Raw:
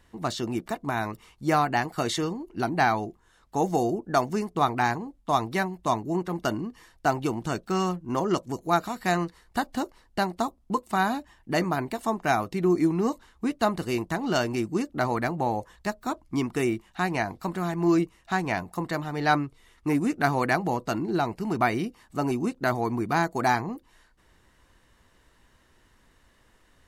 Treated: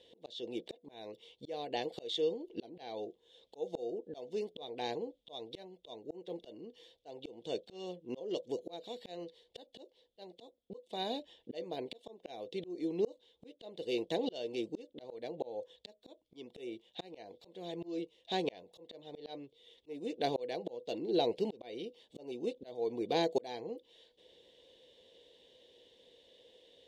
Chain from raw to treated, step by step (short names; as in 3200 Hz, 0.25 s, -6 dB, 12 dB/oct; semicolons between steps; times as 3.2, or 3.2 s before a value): double band-pass 1300 Hz, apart 2.8 oct; auto swell 0.743 s; gain +13.5 dB